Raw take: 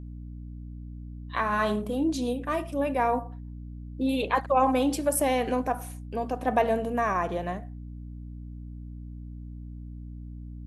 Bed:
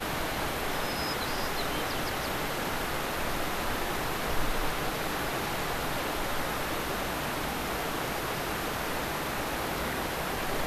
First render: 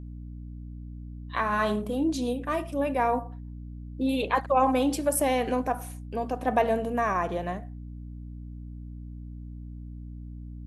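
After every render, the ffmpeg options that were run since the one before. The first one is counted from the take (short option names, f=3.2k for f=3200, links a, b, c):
-af anull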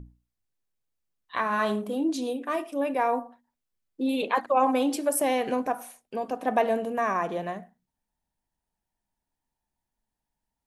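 -af "bandreject=f=60:t=h:w=6,bandreject=f=120:t=h:w=6,bandreject=f=180:t=h:w=6,bandreject=f=240:t=h:w=6,bandreject=f=300:t=h:w=6"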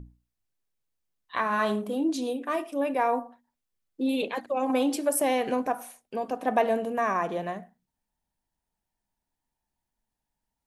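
-filter_complex "[0:a]asettb=1/sr,asplit=3[a][b][c];[a]atrim=end=4.284[d];[b]atrim=start=4.28:end=4.7,asetpts=PTS-STARTPTS,afade=t=in:d=0.004:c=qsin,afade=t=out:st=0.416:d=0.004:c=qsin,equalizer=f=1.1k:t=o:w=1.4:g=-12[e];[c]atrim=start=4.696[f];[d][e]acrossfade=d=0.004:c1=hsin:c2=qsin[g];[g][f]acrossfade=d=0.004:c1=qsin:c2=hsin"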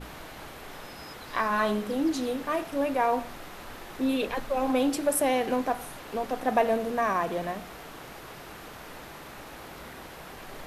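-filter_complex "[1:a]volume=-11.5dB[a];[0:a][a]amix=inputs=2:normalize=0"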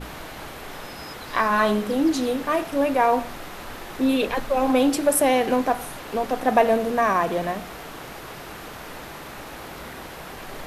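-af "volume=6dB"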